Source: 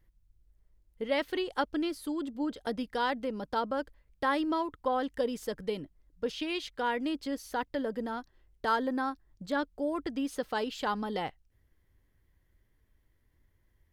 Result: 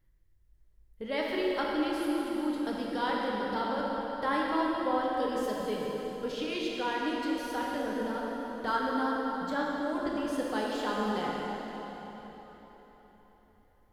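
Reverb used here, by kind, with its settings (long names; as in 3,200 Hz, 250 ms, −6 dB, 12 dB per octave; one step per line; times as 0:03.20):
dense smooth reverb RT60 4.3 s, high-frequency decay 0.8×, DRR −4 dB
level −4 dB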